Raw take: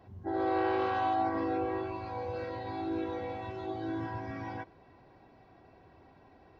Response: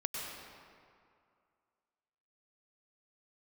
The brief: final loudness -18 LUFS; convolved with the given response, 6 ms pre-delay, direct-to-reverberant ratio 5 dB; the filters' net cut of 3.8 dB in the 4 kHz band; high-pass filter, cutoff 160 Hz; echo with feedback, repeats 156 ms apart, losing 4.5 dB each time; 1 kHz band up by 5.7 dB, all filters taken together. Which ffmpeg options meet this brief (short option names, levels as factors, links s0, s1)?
-filter_complex "[0:a]highpass=160,equalizer=f=1000:t=o:g=8.5,equalizer=f=4000:t=o:g=-5.5,aecho=1:1:156|312|468|624|780|936|1092|1248|1404:0.596|0.357|0.214|0.129|0.0772|0.0463|0.0278|0.0167|0.01,asplit=2[s0][s1];[1:a]atrim=start_sample=2205,adelay=6[s2];[s1][s2]afir=irnorm=-1:irlink=0,volume=0.398[s3];[s0][s3]amix=inputs=2:normalize=0,volume=3.16"